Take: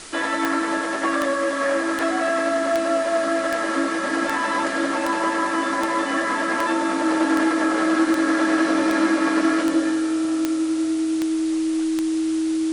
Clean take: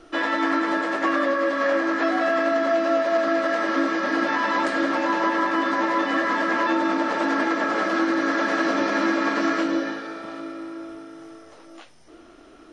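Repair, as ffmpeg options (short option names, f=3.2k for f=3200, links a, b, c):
-af "adeclick=t=4,bandreject=f=320:w=30,afwtdn=0.014"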